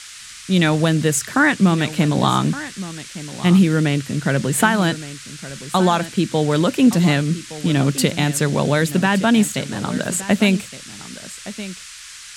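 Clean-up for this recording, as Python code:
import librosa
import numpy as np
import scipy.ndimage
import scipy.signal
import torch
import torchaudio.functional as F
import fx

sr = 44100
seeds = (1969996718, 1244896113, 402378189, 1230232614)

y = fx.noise_reduce(x, sr, print_start_s=11.84, print_end_s=12.34, reduce_db=26.0)
y = fx.fix_echo_inverse(y, sr, delay_ms=1167, level_db=-15.0)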